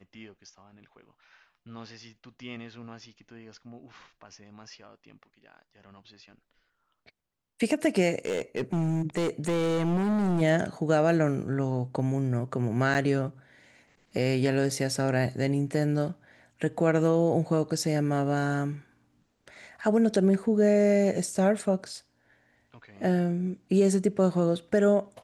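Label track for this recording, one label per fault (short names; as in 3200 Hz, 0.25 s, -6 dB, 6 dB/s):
8.250000	10.420000	clipped -23.5 dBFS
12.940000	12.950000	gap 8.2 ms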